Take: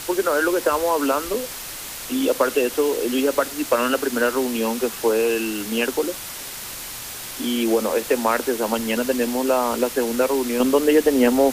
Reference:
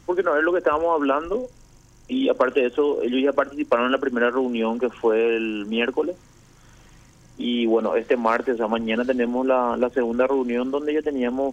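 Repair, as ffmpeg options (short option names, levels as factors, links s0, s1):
-af "afwtdn=0.025,asetnsamples=n=441:p=0,asendcmd='10.6 volume volume -7dB',volume=1"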